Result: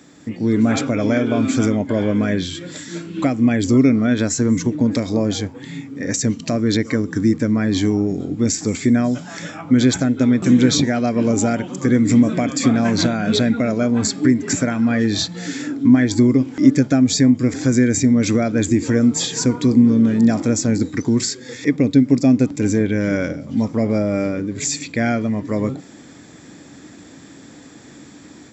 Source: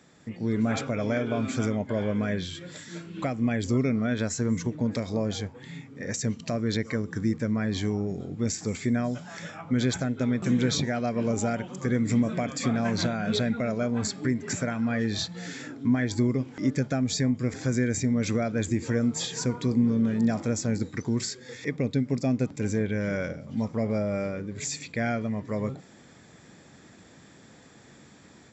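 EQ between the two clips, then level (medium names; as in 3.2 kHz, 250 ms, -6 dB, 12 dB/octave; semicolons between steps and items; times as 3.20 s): peaking EQ 290 Hz +11 dB 0.41 oct; treble shelf 5 kHz +5.5 dB; +7.0 dB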